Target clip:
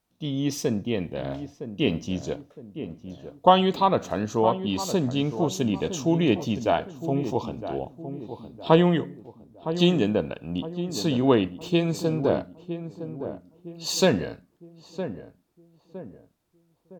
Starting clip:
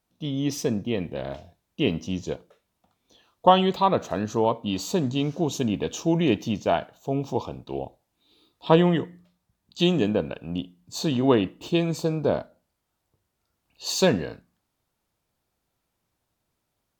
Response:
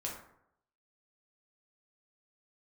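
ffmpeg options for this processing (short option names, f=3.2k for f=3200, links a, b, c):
-filter_complex "[0:a]asplit=2[a][b];[b]adelay=962,lowpass=f=1k:p=1,volume=-10dB,asplit=2[c][d];[d]adelay=962,lowpass=f=1k:p=1,volume=0.43,asplit=2[e][f];[f]adelay=962,lowpass=f=1k:p=1,volume=0.43,asplit=2[g][h];[h]adelay=962,lowpass=f=1k:p=1,volume=0.43,asplit=2[i][j];[j]adelay=962,lowpass=f=1k:p=1,volume=0.43[k];[a][c][e][g][i][k]amix=inputs=6:normalize=0"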